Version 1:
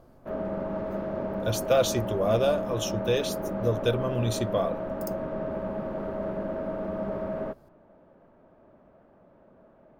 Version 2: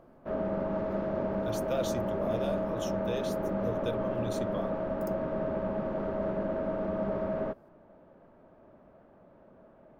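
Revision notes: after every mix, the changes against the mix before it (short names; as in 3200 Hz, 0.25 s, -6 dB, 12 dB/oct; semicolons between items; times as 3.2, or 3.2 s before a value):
speech -11.0 dB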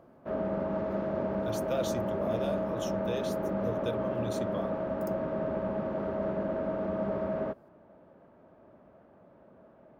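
master: add HPF 55 Hz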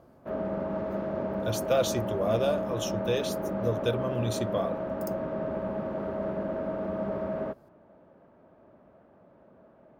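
speech +8.0 dB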